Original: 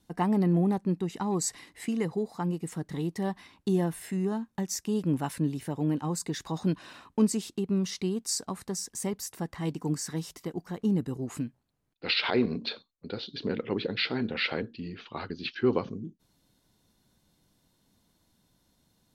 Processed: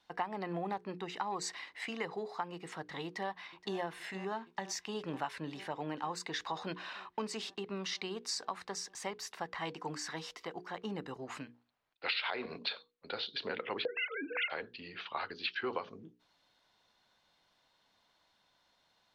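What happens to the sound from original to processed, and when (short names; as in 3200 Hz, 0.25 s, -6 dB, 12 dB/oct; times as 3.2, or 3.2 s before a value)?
3.05–3.77 echo throw 0.47 s, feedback 80%, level -17 dB
13.85–14.5 sine-wave speech
whole clip: three-band isolator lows -21 dB, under 580 Hz, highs -24 dB, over 4700 Hz; notches 60/120/180/240/300/360/420/480 Hz; compressor 5:1, threshold -38 dBFS; gain +5 dB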